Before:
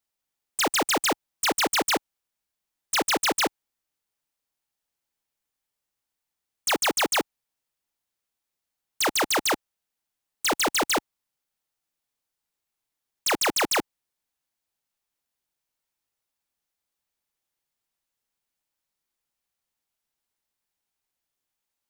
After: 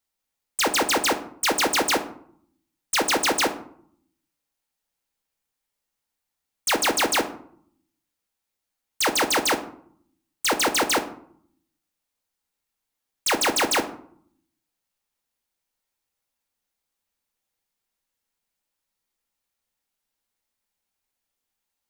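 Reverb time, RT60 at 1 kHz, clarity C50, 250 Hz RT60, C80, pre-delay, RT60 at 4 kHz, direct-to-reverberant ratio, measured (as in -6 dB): 0.60 s, 0.60 s, 12.5 dB, 0.90 s, 16.0 dB, 4 ms, 0.35 s, 5.5 dB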